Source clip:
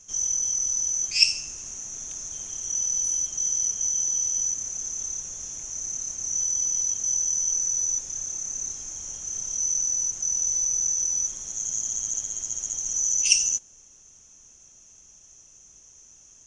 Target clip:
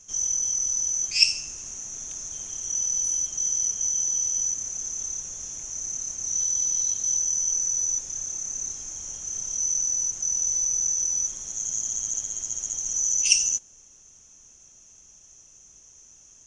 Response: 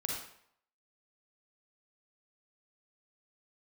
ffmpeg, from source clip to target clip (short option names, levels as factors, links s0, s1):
-filter_complex "[0:a]asettb=1/sr,asplit=3[s0][s1][s2];[s0]atrim=end=6.274[s3];[s1]atrim=start=6.27:end=7.19,asetpts=PTS-STARTPTS,afade=t=in:d=0.004:c=qsin,afade=t=out:st=0.916:d=0.004:c=qsin,equalizer=f=4000:w=4.9:g=10[s4];[s2]atrim=start=7.186[s5];[s3][s4]acrossfade=d=0.004:c1=hsin:c2=qsin[s6];[s6][s5]acrossfade=d=0.004:c1=qsin:c2=hsin"